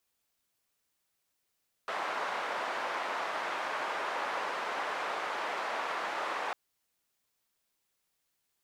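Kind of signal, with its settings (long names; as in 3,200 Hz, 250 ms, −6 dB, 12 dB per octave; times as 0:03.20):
band-limited noise 720–1,100 Hz, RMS −35 dBFS 4.65 s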